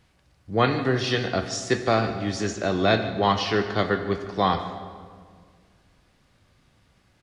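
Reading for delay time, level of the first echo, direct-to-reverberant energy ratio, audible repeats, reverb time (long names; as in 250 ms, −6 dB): 149 ms, −16.5 dB, 8.0 dB, 1, 1.9 s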